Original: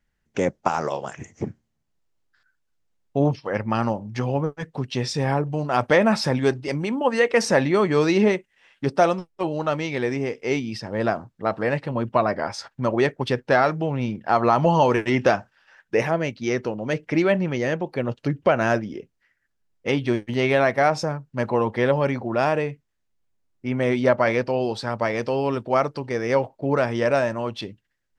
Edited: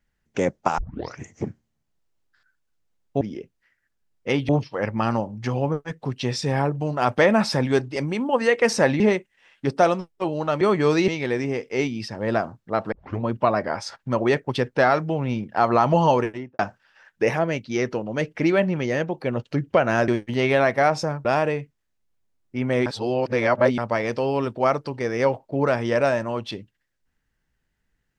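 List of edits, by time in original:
0:00.78: tape start 0.42 s
0:07.72–0:08.19: move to 0:09.80
0:11.64: tape start 0.32 s
0:14.77–0:15.31: fade out and dull
0:18.80–0:20.08: move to 0:03.21
0:21.25–0:22.35: remove
0:23.96–0:24.88: reverse

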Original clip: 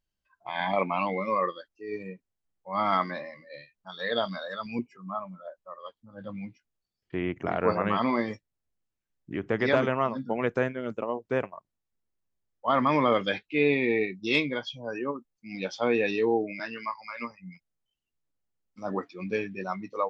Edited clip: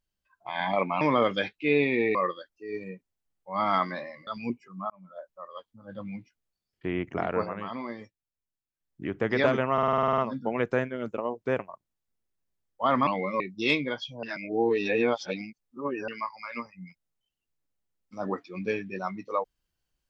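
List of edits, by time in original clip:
0:01.01–0:01.34: swap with 0:12.91–0:14.05
0:03.46–0:04.56: remove
0:05.19–0:05.49: fade in
0:07.50–0:09.34: duck −10 dB, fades 0.36 s
0:10.02: stutter 0.05 s, 10 plays
0:14.88–0:16.73: reverse

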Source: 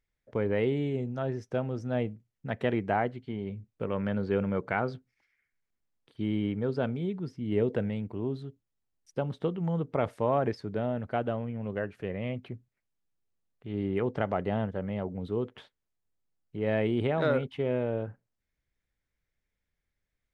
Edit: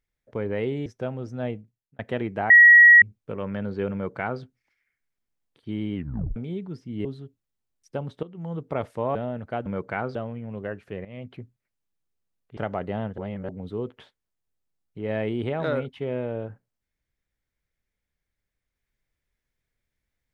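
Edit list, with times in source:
0:00.86–0:01.38: remove
0:01.99–0:02.51: fade out
0:03.02–0:03.54: beep over 1,910 Hz −8 dBFS
0:04.45–0:04.94: duplicate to 0:11.27
0:06.47: tape stop 0.41 s
0:07.57–0:08.28: remove
0:09.46–0:09.88: fade in, from −15 dB
0:10.38–0:10.76: remove
0:12.17–0:12.44: fade in, from −14.5 dB
0:13.69–0:14.15: remove
0:14.76–0:15.07: reverse

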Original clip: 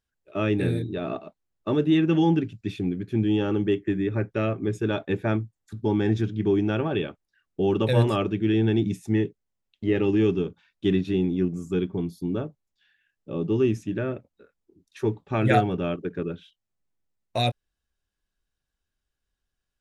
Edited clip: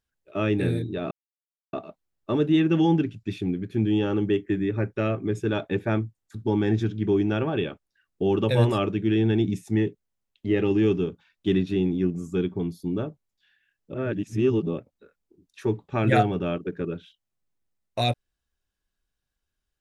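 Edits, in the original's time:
0:01.11: splice in silence 0.62 s
0:13.32–0:14.16: reverse

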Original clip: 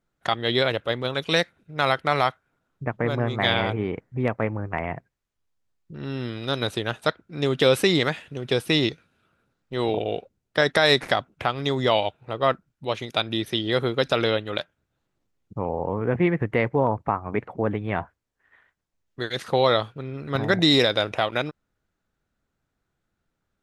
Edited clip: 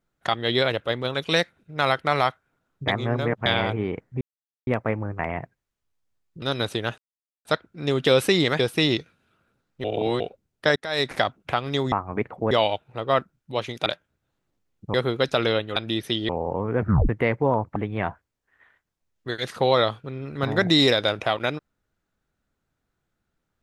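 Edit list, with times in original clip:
0:02.88–0:03.46: reverse
0:04.21: splice in silence 0.46 s
0:05.96–0:06.44: remove
0:07.00: splice in silence 0.47 s
0:08.14–0:08.51: remove
0:09.76–0:10.12: reverse
0:10.68–0:11.14: fade in
0:13.19–0:13.72: swap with 0:14.54–0:15.62
0:16.12: tape stop 0.30 s
0:17.09–0:17.68: move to 0:11.84

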